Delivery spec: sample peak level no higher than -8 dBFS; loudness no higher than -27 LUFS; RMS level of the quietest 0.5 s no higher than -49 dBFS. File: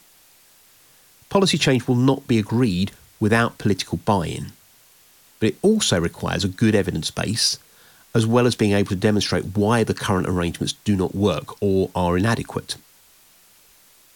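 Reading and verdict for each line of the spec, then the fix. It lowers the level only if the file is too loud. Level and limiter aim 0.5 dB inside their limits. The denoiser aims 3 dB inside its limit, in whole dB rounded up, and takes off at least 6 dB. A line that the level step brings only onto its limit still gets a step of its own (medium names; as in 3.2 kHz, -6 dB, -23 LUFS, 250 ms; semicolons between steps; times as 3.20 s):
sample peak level -5.0 dBFS: fail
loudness -21.0 LUFS: fail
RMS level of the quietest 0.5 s -53 dBFS: pass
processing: trim -6.5 dB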